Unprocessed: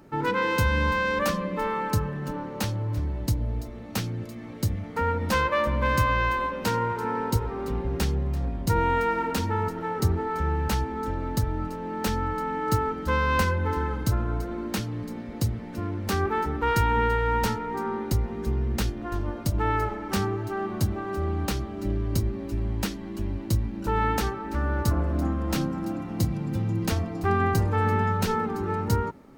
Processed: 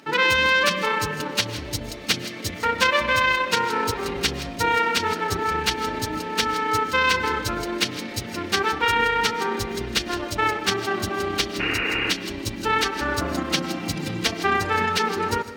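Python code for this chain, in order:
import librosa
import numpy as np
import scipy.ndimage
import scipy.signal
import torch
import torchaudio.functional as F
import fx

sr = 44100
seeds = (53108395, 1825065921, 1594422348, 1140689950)

p1 = fx.weighting(x, sr, curve='D')
p2 = fx.spec_repair(p1, sr, seeds[0], start_s=21.91, length_s=0.91, low_hz=250.0, high_hz=2900.0, source='after')
p3 = fx.peak_eq(p2, sr, hz=89.0, db=-6.5, octaves=2.1)
p4 = fx.rider(p3, sr, range_db=4, speed_s=0.5)
p5 = p3 + (p4 * 10.0 ** (-2.0 / 20.0))
p6 = fx.stretch_grains(p5, sr, factor=0.53, grain_ms=65.0)
p7 = p6 + fx.echo_single(p6, sr, ms=152, db=-15.5, dry=0)
y = fx.rev_freeverb(p7, sr, rt60_s=0.72, hf_ratio=0.8, predelay_ms=80, drr_db=17.0)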